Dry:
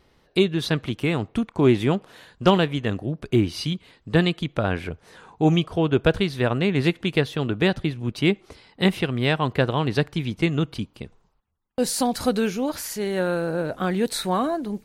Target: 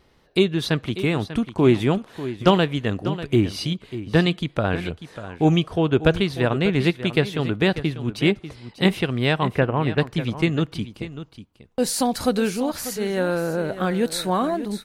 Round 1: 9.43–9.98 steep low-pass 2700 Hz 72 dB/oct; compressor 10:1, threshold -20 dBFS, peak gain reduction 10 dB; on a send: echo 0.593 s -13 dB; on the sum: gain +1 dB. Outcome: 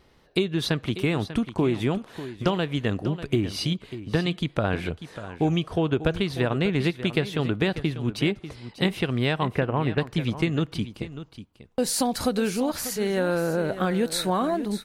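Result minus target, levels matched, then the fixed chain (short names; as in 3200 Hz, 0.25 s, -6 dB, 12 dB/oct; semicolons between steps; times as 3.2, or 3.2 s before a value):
compressor: peak gain reduction +10 dB
9.43–9.98 steep low-pass 2700 Hz 72 dB/oct; on a send: echo 0.593 s -13 dB; on the sum: gain +1 dB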